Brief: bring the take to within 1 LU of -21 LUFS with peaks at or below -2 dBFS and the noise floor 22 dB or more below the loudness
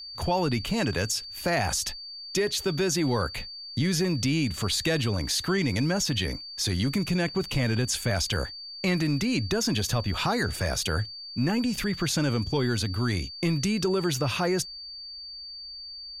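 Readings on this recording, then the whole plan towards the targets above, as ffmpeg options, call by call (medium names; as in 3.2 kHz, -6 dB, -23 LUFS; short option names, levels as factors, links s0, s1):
steady tone 4.6 kHz; tone level -38 dBFS; loudness -27.0 LUFS; peak level -13.5 dBFS; loudness target -21.0 LUFS
-> -af "bandreject=f=4600:w=30"
-af "volume=2"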